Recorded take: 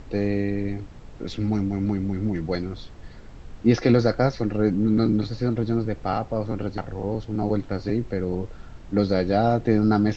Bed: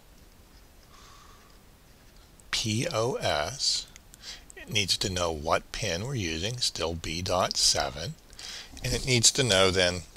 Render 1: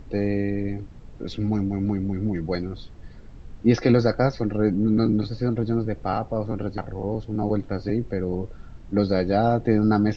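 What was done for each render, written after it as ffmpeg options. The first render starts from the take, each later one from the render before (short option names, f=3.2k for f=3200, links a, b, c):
-af "afftdn=nr=6:nf=-43"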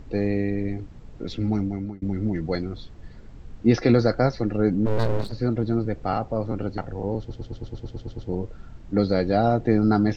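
-filter_complex "[0:a]asplit=3[a][b][c];[a]afade=t=out:st=4.85:d=0.02[d];[b]aeval=exprs='abs(val(0))':c=same,afade=t=in:st=4.85:d=0.02,afade=t=out:st=5.31:d=0.02[e];[c]afade=t=in:st=5.31:d=0.02[f];[d][e][f]amix=inputs=3:normalize=0,asplit=12[g][h][i][j][k][l][m][n][o][p][q][r];[g]atrim=end=2.02,asetpts=PTS-STARTPTS,afade=t=out:st=1.48:d=0.54:c=qsin[s];[h]atrim=start=2.02:end=7.302,asetpts=PTS-STARTPTS,afade=t=in:d=0.004:c=hsin[t];[i]atrim=start=7.188:end=7.302[u];[j]atrim=start=7.188:end=7.302[v];[k]atrim=start=7.188:end=7.302[w];[l]atrim=start=7.188:end=7.302[x];[m]atrim=start=7.188:end=7.302[y];[n]atrim=start=7.188:end=7.302[z];[o]atrim=start=7.188:end=7.302[aa];[p]atrim=start=7.188:end=7.302[ab];[q]atrim=start=7.188:end=7.302[ac];[r]atrim=start=8.288[ad];[s][t]concat=n=2:v=0:a=1[ae];[ae][u]acrossfade=d=0.004:c1=hsin:c2=hsin[af];[af][v]acrossfade=d=0.004:c1=hsin:c2=hsin[ag];[ag][w]acrossfade=d=0.004:c1=hsin:c2=hsin[ah];[ah][x]acrossfade=d=0.004:c1=hsin:c2=hsin[ai];[ai][y]acrossfade=d=0.004:c1=hsin:c2=hsin[aj];[aj][z]acrossfade=d=0.004:c1=hsin:c2=hsin[ak];[ak][aa]acrossfade=d=0.004:c1=hsin:c2=hsin[al];[al][ab]acrossfade=d=0.004:c1=hsin:c2=hsin[am];[am][ac]acrossfade=d=0.004:c1=hsin:c2=hsin[an];[an][ad]acrossfade=d=0.004:c1=hsin:c2=hsin"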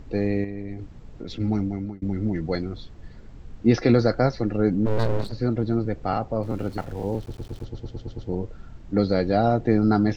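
-filter_complex "[0:a]asettb=1/sr,asplit=3[a][b][c];[a]atrim=end=0.444[d];[b]atrim=start=0.44:end=1.4,asetpts=PTS-STARTPTS,afade=t=in:d=0.004:c=qsin,afade=t=out:st=0.956:d=0.004:c=qsin,acompressor=threshold=-30dB:ratio=3:attack=3.2:release=140:knee=1:detection=peak[e];[c]atrim=start=1.396[f];[d][e]acrossfade=d=0.004:c1=hsin:c2=qsin[g];[g][f]acrossfade=d=0.004:c1=qsin:c2=hsin,asettb=1/sr,asplit=3[h][i][j];[h]atrim=end=6.434[k];[i]atrim=start=6.43:end=7.65,asetpts=PTS-STARTPTS,afade=t=in:d=0.004:c=qsin,afade=t=out:st=1.216:d=0.004:c=qsin,aeval=exprs='val(0)*gte(abs(val(0)),0.00668)':c=same[l];[j]atrim=start=7.646[m];[k][l]acrossfade=d=0.004:c1=hsin:c2=qsin[n];[n][m]acrossfade=d=0.004:c1=qsin:c2=hsin"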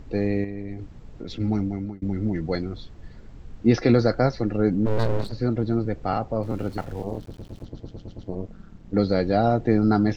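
-filter_complex "[0:a]asettb=1/sr,asplit=3[a][b][c];[a]atrim=end=7.024[d];[b]atrim=start=7.02:end=8.94,asetpts=PTS-STARTPTS,afade=t=in:d=0.004:c=qsin,afade=t=out:st=1.916:d=0.004:c=qsin,tremolo=f=190:d=0.919[e];[c]atrim=start=8.936[f];[d][e]acrossfade=d=0.004:c1=hsin:c2=qsin[g];[g][f]acrossfade=d=0.004:c1=qsin:c2=hsin"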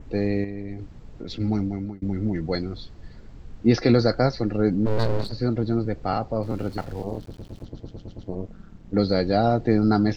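-af "adynamicequalizer=threshold=0.00178:dfrequency=4500:dqfactor=3.6:tfrequency=4500:tqfactor=3.6:attack=5:release=100:ratio=0.375:range=3.5:mode=boostabove:tftype=bell"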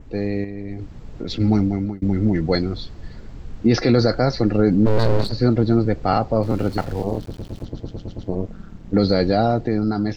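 -af "alimiter=limit=-13.5dB:level=0:latency=1:release=34,dynaudnorm=f=120:g=13:m=7dB"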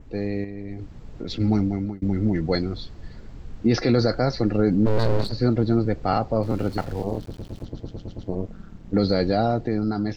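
-af "volume=-3.5dB"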